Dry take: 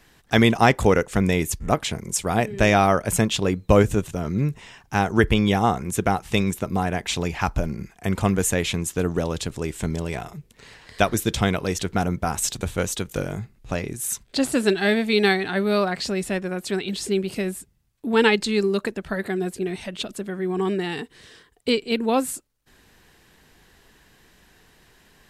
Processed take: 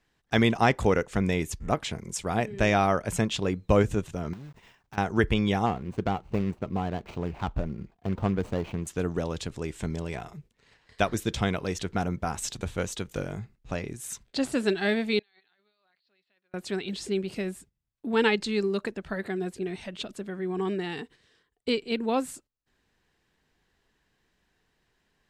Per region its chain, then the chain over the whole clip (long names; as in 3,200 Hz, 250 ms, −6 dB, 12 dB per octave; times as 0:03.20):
0:04.33–0:04.98: one scale factor per block 3 bits + high-shelf EQ 3,000 Hz −5 dB + downward compressor, threshold −35 dBFS
0:05.66–0:08.87: running median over 25 samples + high-shelf EQ 5,100 Hz −5 dB
0:15.19–0:16.54: resonant band-pass 4,300 Hz, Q 4.9 + high-frequency loss of the air 500 metres + compressor whose output falls as the input rises −56 dBFS
whole clip: noise gate −44 dBFS, range −11 dB; parametric band 12,000 Hz −9.5 dB 0.87 octaves; level −5.5 dB